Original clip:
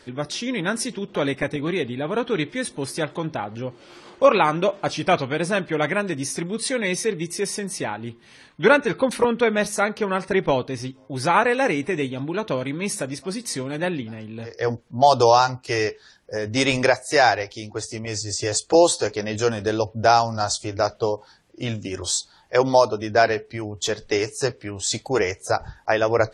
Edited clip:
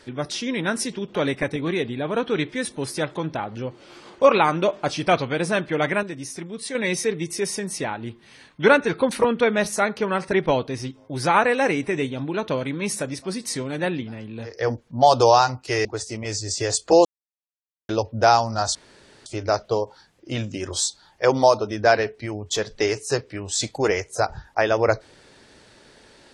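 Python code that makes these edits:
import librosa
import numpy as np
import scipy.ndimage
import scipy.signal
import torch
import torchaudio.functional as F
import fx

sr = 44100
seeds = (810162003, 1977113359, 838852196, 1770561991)

y = fx.edit(x, sr, fx.clip_gain(start_s=6.03, length_s=0.72, db=-6.5),
    fx.cut(start_s=15.85, length_s=1.82),
    fx.silence(start_s=18.87, length_s=0.84),
    fx.insert_room_tone(at_s=20.57, length_s=0.51), tone=tone)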